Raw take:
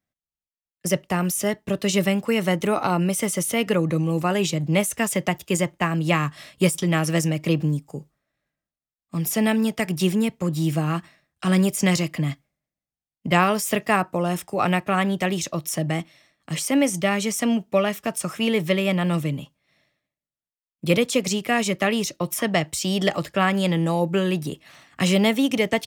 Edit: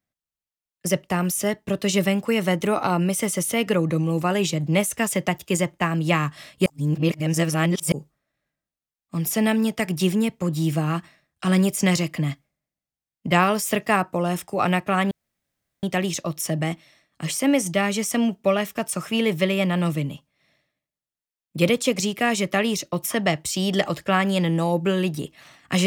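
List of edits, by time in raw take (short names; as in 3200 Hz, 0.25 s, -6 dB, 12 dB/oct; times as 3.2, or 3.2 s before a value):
6.66–7.92 reverse
15.11 insert room tone 0.72 s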